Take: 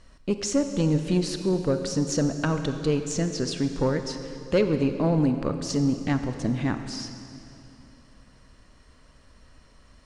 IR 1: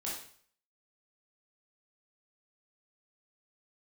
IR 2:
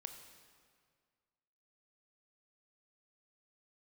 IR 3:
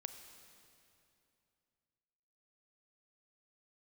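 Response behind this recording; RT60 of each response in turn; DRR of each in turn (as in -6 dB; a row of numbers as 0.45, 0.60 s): 3; 0.55, 1.9, 2.7 s; -6.0, 6.0, 7.5 dB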